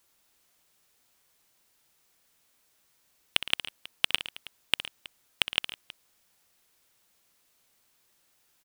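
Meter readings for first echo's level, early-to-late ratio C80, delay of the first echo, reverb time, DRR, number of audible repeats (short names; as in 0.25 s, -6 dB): -13.0 dB, none, 63 ms, none, none, 3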